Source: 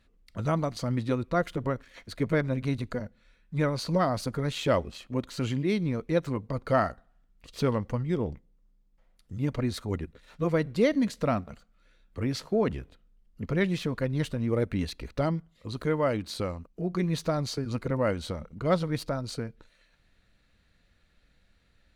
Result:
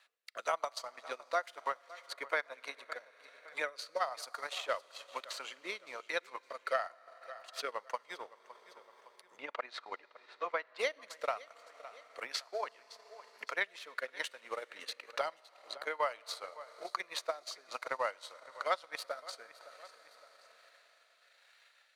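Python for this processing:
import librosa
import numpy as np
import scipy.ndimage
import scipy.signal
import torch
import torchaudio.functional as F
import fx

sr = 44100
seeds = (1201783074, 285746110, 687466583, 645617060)

y = scipy.signal.sosfilt(scipy.signal.butter(4, 730.0, 'highpass', fs=sr, output='sos'), x)
y = fx.rotary(y, sr, hz=1.1)
y = fx.lowpass(y, sr, hz=2800.0, slope=12, at=(9.36, 10.78), fade=0.02)
y = fx.rev_schroeder(y, sr, rt60_s=4.0, comb_ms=27, drr_db=13.5)
y = fx.transient(y, sr, attack_db=10, sustain_db=-7)
y = fx.echo_feedback(y, sr, ms=562, feedback_pct=32, wet_db=-22.0)
y = fx.band_squash(y, sr, depth_pct=40)
y = F.gain(torch.from_numpy(y), -3.5).numpy()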